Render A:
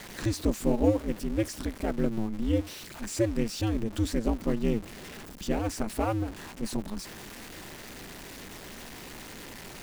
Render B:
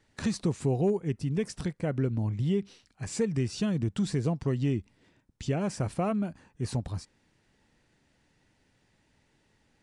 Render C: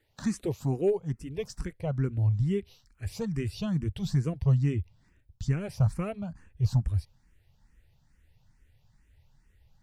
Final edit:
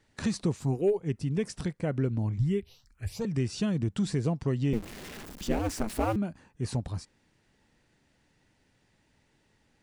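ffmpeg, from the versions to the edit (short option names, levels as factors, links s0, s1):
-filter_complex "[2:a]asplit=2[s0][s1];[1:a]asplit=4[s2][s3][s4][s5];[s2]atrim=end=0.69[s6];[s0]atrim=start=0.53:end=1.1[s7];[s3]atrim=start=0.94:end=2.382[s8];[s1]atrim=start=2.378:end=3.252[s9];[s4]atrim=start=3.248:end=4.732[s10];[0:a]atrim=start=4.728:end=6.162[s11];[s5]atrim=start=6.158[s12];[s6][s7]acrossfade=d=0.16:c1=tri:c2=tri[s13];[s13][s8]acrossfade=d=0.16:c1=tri:c2=tri[s14];[s14][s9]acrossfade=d=0.004:c1=hsin:c2=hsin[s15];[s15][s10]acrossfade=d=0.004:c1=hsin:c2=hsin[s16];[s16][s11]acrossfade=d=0.004:c1=hsin:c2=hsin[s17];[s17][s12]acrossfade=d=0.004:c1=hsin:c2=hsin"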